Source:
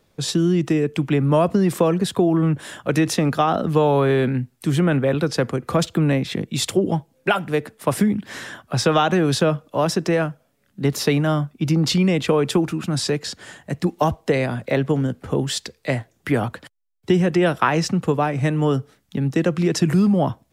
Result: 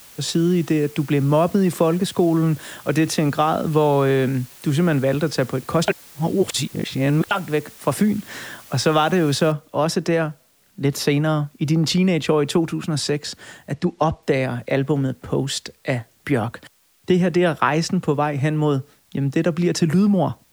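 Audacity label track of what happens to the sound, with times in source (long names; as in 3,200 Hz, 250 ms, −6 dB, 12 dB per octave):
5.880000	7.310000	reverse
9.520000	9.520000	noise floor change −45 dB −60 dB
13.730000	14.230000	low-pass filter 6,300 Hz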